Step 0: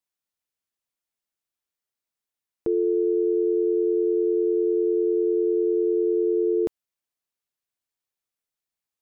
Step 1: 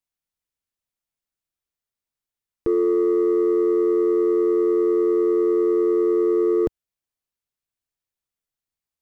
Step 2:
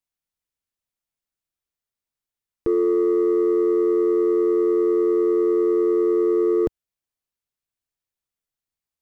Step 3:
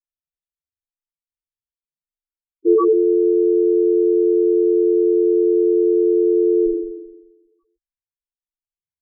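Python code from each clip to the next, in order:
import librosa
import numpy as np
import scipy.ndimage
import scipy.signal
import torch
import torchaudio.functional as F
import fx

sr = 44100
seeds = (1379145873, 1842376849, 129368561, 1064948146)

y1 = fx.low_shelf(x, sr, hz=130.0, db=11.5)
y1 = fx.leveller(y1, sr, passes=1)
y2 = y1
y3 = fx.leveller(y2, sr, passes=5)
y3 = fx.room_flutter(y3, sr, wall_m=7.5, rt60_s=1.1)
y3 = fx.spec_topn(y3, sr, count=2)
y3 = y3 * librosa.db_to_amplitude(7.5)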